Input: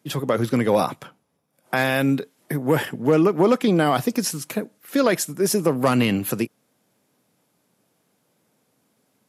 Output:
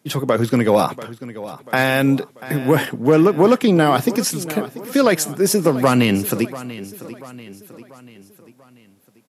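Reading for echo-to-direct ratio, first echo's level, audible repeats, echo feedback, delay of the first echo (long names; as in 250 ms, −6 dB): −15.0 dB, −16.0 dB, 3, 48%, 689 ms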